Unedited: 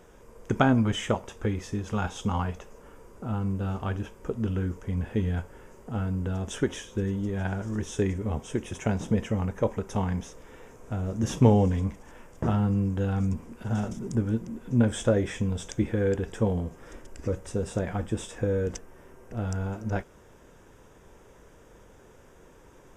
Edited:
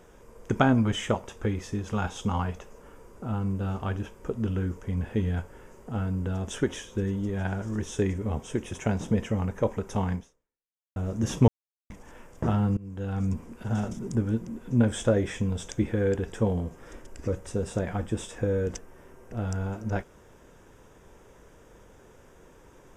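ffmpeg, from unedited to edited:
ffmpeg -i in.wav -filter_complex "[0:a]asplit=5[link_01][link_02][link_03][link_04][link_05];[link_01]atrim=end=10.96,asetpts=PTS-STARTPTS,afade=type=out:start_time=10.14:duration=0.82:curve=exp[link_06];[link_02]atrim=start=10.96:end=11.48,asetpts=PTS-STARTPTS,afade=type=in:duration=0.004:curve=hsin,afade=type=out:start_time=0.516:duration=0.004:curve=hsin[link_07];[link_03]atrim=start=11.48:end=11.9,asetpts=PTS-STARTPTS,volume=0[link_08];[link_04]atrim=start=11.9:end=12.77,asetpts=PTS-STARTPTS,afade=type=in:duration=0.004:curve=hsin,afade=type=out:start_time=0.866:duration=0.004:curve=hsin:silence=0.0668344[link_09];[link_05]atrim=start=12.77,asetpts=PTS-STARTPTS,afade=type=in:duration=0.54:silence=0.0668344[link_10];[link_06][link_07][link_08][link_09][link_10]concat=n=5:v=0:a=1" out.wav

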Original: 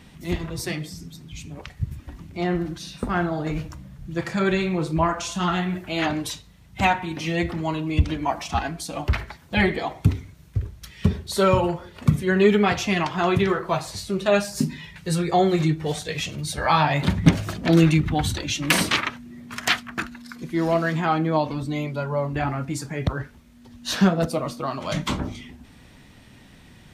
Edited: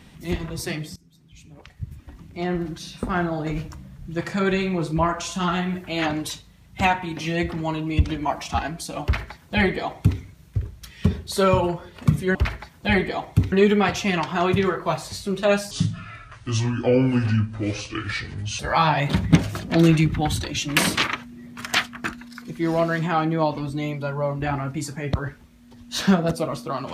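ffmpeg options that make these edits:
ffmpeg -i in.wav -filter_complex "[0:a]asplit=6[link_01][link_02][link_03][link_04][link_05][link_06];[link_01]atrim=end=0.96,asetpts=PTS-STARTPTS,afade=type=out:start_time=0.956:duration=0.004:curve=hsin:silence=0.0944061[link_07];[link_02]atrim=start=0.96:end=12.352,asetpts=PTS-STARTPTS,afade=type=in:duration=1.85:silence=0.0944061[link_08];[link_03]atrim=start=9.028:end=10.202[link_09];[link_04]atrim=start=12.348:end=14.544[link_10];[link_05]atrim=start=14.54:end=16.53,asetpts=PTS-STARTPTS,asetrate=30429,aresample=44100[link_11];[link_06]atrim=start=16.526[link_12];[link_07][link_08]concat=n=2:v=0:a=1[link_13];[link_13][link_09]acrossfade=duration=0.004:curve1=hsin:curve2=hsin[link_14];[link_14][link_10]acrossfade=duration=0.004:curve1=hsin:curve2=hsin[link_15];[link_15][link_11]acrossfade=duration=0.004:curve1=hsin:curve2=hsin[link_16];[link_16][link_12]acrossfade=duration=0.004:curve1=hsin:curve2=hsin" out.wav

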